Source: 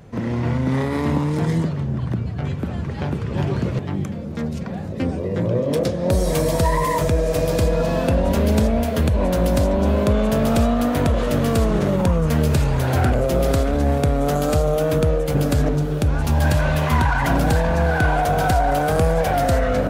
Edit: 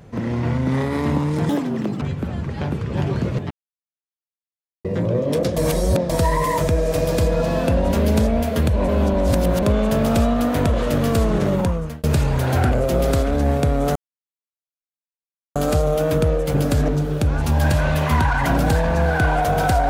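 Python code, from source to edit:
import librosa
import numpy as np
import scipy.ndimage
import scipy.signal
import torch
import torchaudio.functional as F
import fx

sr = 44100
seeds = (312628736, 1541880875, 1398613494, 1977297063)

y = fx.edit(x, sr, fx.speed_span(start_s=1.49, length_s=0.93, speed=1.77),
    fx.silence(start_s=3.91, length_s=1.34),
    fx.reverse_span(start_s=5.97, length_s=0.53),
    fx.reverse_span(start_s=9.29, length_s=0.74),
    fx.fade_out_span(start_s=11.97, length_s=0.47),
    fx.insert_silence(at_s=14.36, length_s=1.6), tone=tone)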